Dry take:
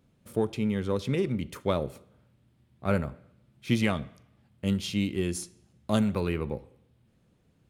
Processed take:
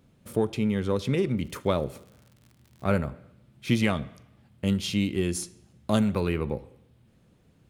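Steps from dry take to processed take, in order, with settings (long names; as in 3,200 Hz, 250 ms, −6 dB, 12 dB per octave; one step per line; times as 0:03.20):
in parallel at −2 dB: downward compressor, threshold −33 dBFS, peak gain reduction 13 dB
0:01.37–0:02.94: on the sum: surface crackle 78 per second −43 dBFS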